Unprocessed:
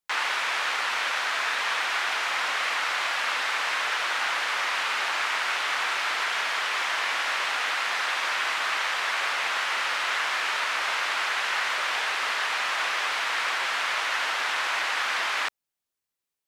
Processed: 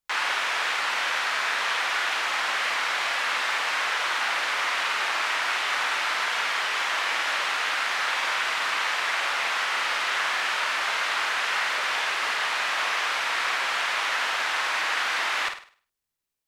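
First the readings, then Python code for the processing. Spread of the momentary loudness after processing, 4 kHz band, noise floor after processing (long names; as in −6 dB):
0 LU, +1.0 dB, −62 dBFS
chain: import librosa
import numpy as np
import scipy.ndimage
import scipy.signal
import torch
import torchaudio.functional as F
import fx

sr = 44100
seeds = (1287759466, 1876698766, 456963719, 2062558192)

y = fx.low_shelf(x, sr, hz=84.0, db=11.5)
y = fx.room_flutter(y, sr, wall_m=8.8, rt60_s=0.43)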